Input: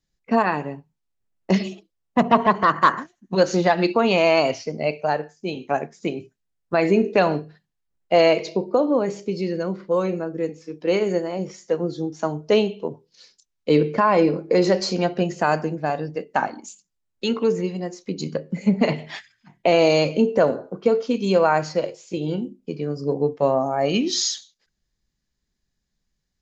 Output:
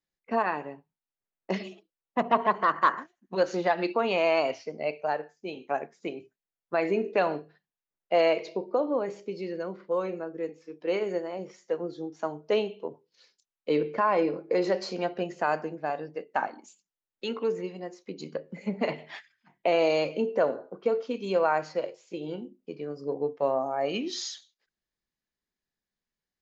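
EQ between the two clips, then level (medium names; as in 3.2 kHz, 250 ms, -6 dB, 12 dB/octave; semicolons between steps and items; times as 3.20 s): tone controls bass -8 dB, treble -9 dB; bass shelf 120 Hz -8 dB; -6.0 dB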